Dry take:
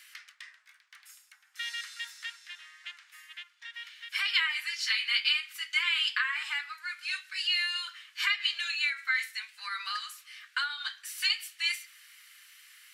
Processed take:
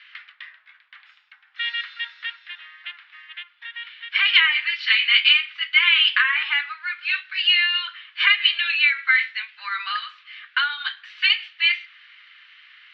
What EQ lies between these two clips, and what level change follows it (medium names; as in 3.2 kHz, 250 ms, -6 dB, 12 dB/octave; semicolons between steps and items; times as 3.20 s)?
dynamic bell 2.7 kHz, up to +4 dB, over -37 dBFS, Q 0.94; steep low-pass 3.6 kHz 36 dB/octave; +8.5 dB